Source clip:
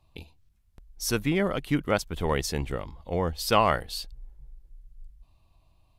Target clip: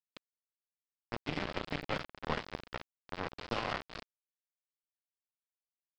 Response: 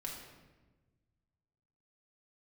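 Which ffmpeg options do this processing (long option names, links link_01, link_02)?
-filter_complex "[0:a]acrossover=split=400|960[link_01][link_02][link_03];[link_03]crystalizer=i=7:c=0[link_04];[link_01][link_02][link_04]amix=inputs=3:normalize=0,acrossover=split=110|1300[link_05][link_06][link_07];[link_05]acompressor=threshold=-48dB:ratio=4[link_08];[link_06]acompressor=threshold=-32dB:ratio=4[link_09];[link_07]acompressor=threshold=-31dB:ratio=4[link_10];[link_08][link_09][link_10]amix=inputs=3:normalize=0,adynamicequalizer=threshold=0.0112:dfrequency=740:dqfactor=2:tfrequency=740:tqfactor=2:attack=5:release=100:ratio=0.375:range=1.5:mode=boostabove:tftype=bell[link_11];[1:a]atrim=start_sample=2205[link_12];[link_11][link_12]afir=irnorm=-1:irlink=0,aresample=11025,aeval=exprs='val(0)*gte(abs(val(0)),0.0422)':channel_layout=same,aresample=44100,lowpass=frequency=1700:poles=1,aeval=exprs='0.237*(cos(1*acos(clip(val(0)/0.237,-1,1)))-cos(1*PI/2))+0.0188*(cos(3*acos(clip(val(0)/0.237,-1,1)))-cos(3*PI/2))+0.0335*(cos(4*acos(clip(val(0)/0.237,-1,1)))-cos(4*PI/2))+0.00944*(cos(7*acos(clip(val(0)/0.237,-1,1)))-cos(7*PI/2))+0.0015*(cos(8*acos(clip(val(0)/0.237,-1,1)))-cos(8*PI/2))':channel_layout=same,volume=4.5dB"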